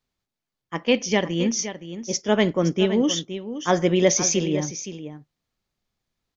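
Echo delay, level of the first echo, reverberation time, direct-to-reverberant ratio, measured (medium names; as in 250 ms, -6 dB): 518 ms, -11.5 dB, no reverb, no reverb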